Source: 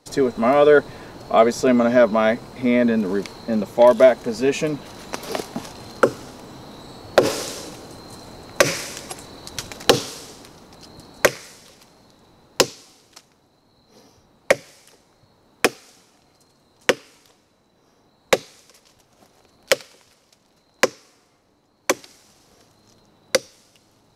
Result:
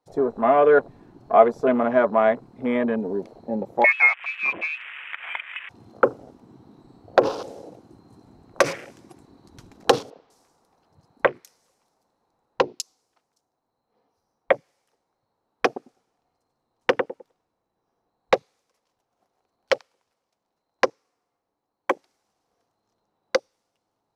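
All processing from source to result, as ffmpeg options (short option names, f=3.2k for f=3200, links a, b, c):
-filter_complex "[0:a]asettb=1/sr,asplit=3[a][b][c];[a]atrim=end=3.844[d];[b]atrim=start=3.84:end=5.69,asetpts=PTS-STARTPTS,afade=t=in:d=0.004:c=qsin,afade=t=out:st=1.846:d=0.004:c=qsin,acompressor=mode=upward:threshold=-19dB:ratio=2.5:attack=3.2:release=140:knee=2.83:detection=peak,lowpass=f=2.4k:t=q:w=0.5098,lowpass=f=2.4k:t=q:w=0.6013,lowpass=f=2.4k:t=q:w=0.9,lowpass=f=2.4k:t=q:w=2.563,afreqshift=-2800[e];[c]atrim=start=5.686[f];[d][e]acrossfade=d=0.004:c1=hsin:c2=qsin[g];[g][f]acrossfade=d=0.004:c1=qsin:c2=hsin,asettb=1/sr,asplit=3[h][i][j];[h]atrim=end=10.104[k];[i]atrim=start=10.1:end=14.53,asetpts=PTS-STARTPTS,afade=t=in:d=0.004:c=qsin,afade=t=out:st=4.426:d=0.004:c=qsin,bandreject=f=60:t=h:w=6,bandreject=f=120:t=h:w=6,bandreject=f=180:t=h:w=6,bandreject=f=240:t=h:w=6,bandreject=f=300:t=h:w=6,bandreject=f=360:t=h:w=6,bandreject=f=420:t=h:w=6,acrossover=split=4100[l][m];[m]adelay=200[n];[l][n]amix=inputs=2:normalize=0,atrim=end_sample=195363[o];[j]atrim=start=14.526[p];[k][o]acrossfade=d=0.004:c1=hsin:c2=qsin[q];[q][p]acrossfade=d=0.004:c1=qsin:c2=hsin,asettb=1/sr,asplit=3[r][s][t];[r]atrim=end=15.664[u];[s]atrim=start=15.66:end=18.35,asetpts=PTS-STARTPTS,afade=t=in:d=0.004:c=qsin,afade=t=out:st=2.686:d=0.004:c=qsin,lowshelf=f=130:g=6,asplit=2[v][w];[w]adelay=102,lowpass=f=1.8k:p=1,volume=-4dB,asplit=2[x][y];[y]adelay=102,lowpass=f=1.8k:p=1,volume=0.31,asplit=2[z][aa];[aa]adelay=102,lowpass=f=1.8k:p=1,volume=0.31,asplit=2[ab][ac];[ac]adelay=102,lowpass=f=1.8k:p=1,volume=0.31[ad];[v][x][z][ab][ad]amix=inputs=5:normalize=0,atrim=end_sample=118629[ae];[t]atrim=start=18.346[af];[u][ae]acrossfade=d=0.004:c1=hsin:c2=qsin[ag];[ag][af]acrossfade=d=0.004:c1=qsin:c2=hsin,bandreject=f=600:w=12,afwtdn=0.0316,equalizer=f=780:t=o:w=2.1:g=11,volume=-9dB"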